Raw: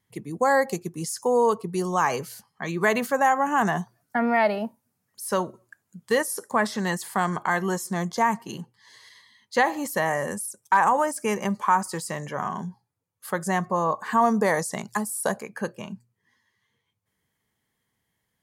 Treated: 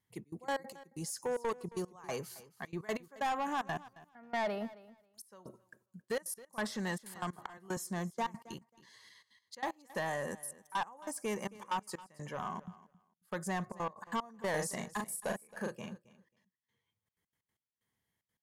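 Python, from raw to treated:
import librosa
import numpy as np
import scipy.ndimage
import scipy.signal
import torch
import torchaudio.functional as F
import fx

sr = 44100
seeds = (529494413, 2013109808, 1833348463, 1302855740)

y = fx.step_gate(x, sr, bpm=187, pattern='xxx.x.x.x...xx', floor_db=-24.0, edge_ms=4.5)
y = 10.0 ** (-20.5 / 20.0) * np.tanh(y / 10.0 ** (-20.5 / 20.0))
y = fx.doubler(y, sr, ms=39.0, db=-3, at=(14.5, 15.91))
y = fx.echo_feedback(y, sr, ms=270, feedback_pct=16, wet_db=-19.0)
y = fx.band_squash(y, sr, depth_pct=40, at=(7.15, 7.77))
y = y * librosa.db_to_amplitude(-8.5)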